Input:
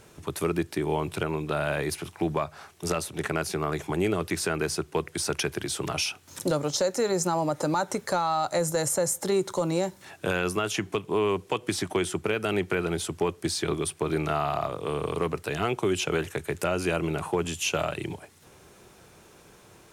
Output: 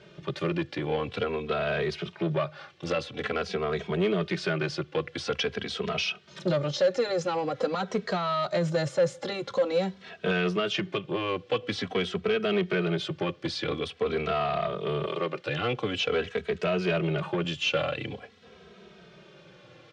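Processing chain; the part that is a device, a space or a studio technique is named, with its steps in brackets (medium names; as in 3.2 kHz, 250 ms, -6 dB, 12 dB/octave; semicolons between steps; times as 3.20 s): 15.05–15.46 s: high-pass 280 Hz 12 dB/octave; barber-pole flanger into a guitar amplifier (endless flanger 2.8 ms -0.47 Hz; saturation -25 dBFS, distortion -15 dB; cabinet simulation 91–4500 Hz, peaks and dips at 93 Hz -7 dB, 190 Hz +4 dB, 300 Hz -7 dB, 510 Hz +5 dB, 900 Hz -8 dB, 3.2 kHz +4 dB); trim +5 dB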